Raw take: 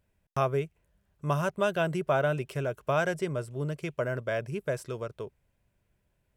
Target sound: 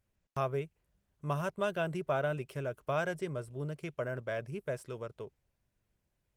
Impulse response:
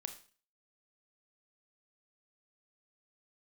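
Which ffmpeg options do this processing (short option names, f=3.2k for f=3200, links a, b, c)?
-af "volume=-5.5dB" -ar 48000 -c:a libopus -b:a 24k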